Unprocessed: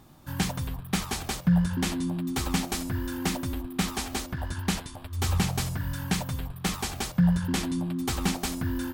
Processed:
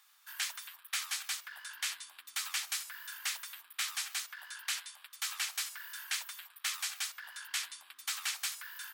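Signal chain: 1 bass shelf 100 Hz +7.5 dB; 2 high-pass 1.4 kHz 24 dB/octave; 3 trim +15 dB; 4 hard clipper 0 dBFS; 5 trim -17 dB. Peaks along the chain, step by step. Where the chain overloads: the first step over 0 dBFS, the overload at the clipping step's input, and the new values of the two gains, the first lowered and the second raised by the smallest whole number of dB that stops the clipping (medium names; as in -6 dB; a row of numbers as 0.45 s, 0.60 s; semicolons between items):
-11.0 dBFS, -17.5 dBFS, -2.5 dBFS, -2.5 dBFS, -19.5 dBFS; nothing clips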